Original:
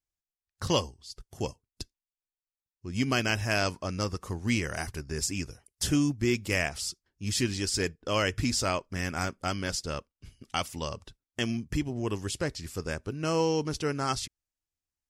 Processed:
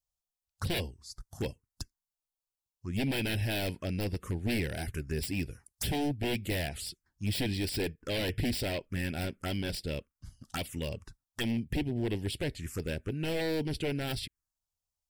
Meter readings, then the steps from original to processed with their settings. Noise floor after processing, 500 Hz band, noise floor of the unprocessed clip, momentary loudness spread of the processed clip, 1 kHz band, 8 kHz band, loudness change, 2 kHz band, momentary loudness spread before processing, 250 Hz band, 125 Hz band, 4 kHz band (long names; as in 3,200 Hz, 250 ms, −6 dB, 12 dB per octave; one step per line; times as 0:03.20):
below −85 dBFS, −4.0 dB, below −85 dBFS, 10 LU, −9.0 dB, −9.0 dB, −3.5 dB, −5.5 dB, 12 LU, −2.5 dB, −1.0 dB, −3.5 dB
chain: wave folding −25.5 dBFS
phaser swept by the level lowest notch 310 Hz, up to 1,200 Hz, full sweep at −31 dBFS
level +2 dB